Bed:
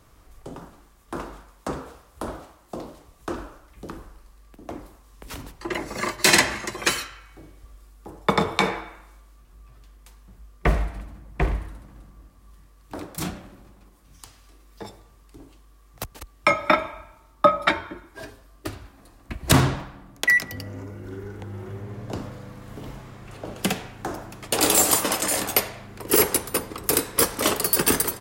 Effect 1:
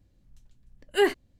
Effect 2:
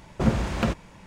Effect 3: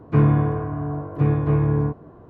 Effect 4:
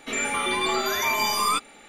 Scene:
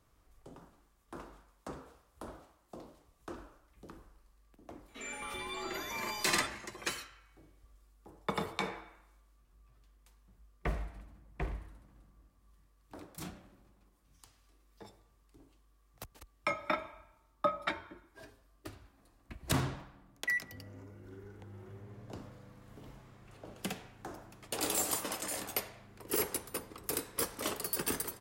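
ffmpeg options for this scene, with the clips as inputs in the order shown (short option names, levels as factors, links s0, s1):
-filter_complex "[0:a]volume=0.188[s0];[1:a]aderivative[s1];[4:a]atrim=end=1.88,asetpts=PTS-STARTPTS,volume=0.15,afade=t=in:d=0.004:c=hsin,afade=t=out:st=1.876:d=0.004:c=hsin,adelay=4880[s2];[s1]atrim=end=1.39,asetpts=PTS-STARTPTS,volume=0.168,afade=t=in:d=0.004:c=hsin,afade=t=out:st=1.386:d=0.004:c=hsin,adelay=7390[s3];[s0][s2][s3]amix=inputs=3:normalize=0"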